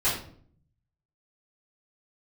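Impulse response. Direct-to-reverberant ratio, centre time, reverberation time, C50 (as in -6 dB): -11.0 dB, 39 ms, 0.55 s, 4.0 dB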